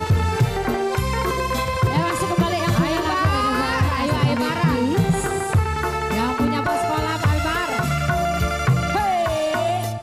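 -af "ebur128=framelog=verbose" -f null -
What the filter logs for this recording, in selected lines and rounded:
Integrated loudness:
  I:         -20.8 LUFS
  Threshold: -30.8 LUFS
Loudness range:
  LRA:         1.3 LU
  Threshold: -40.6 LUFS
  LRA low:   -21.2 LUFS
  LRA high:  -20.0 LUFS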